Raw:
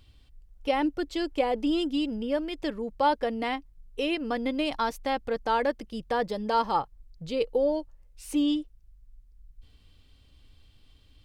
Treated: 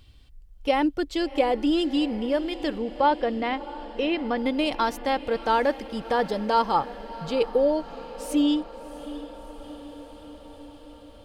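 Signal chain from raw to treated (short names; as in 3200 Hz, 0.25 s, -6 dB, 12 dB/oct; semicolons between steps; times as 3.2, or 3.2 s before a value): 2.78–4.38 air absorption 160 m; diffused feedback echo 0.678 s, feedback 68%, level -16 dB; gain +3.5 dB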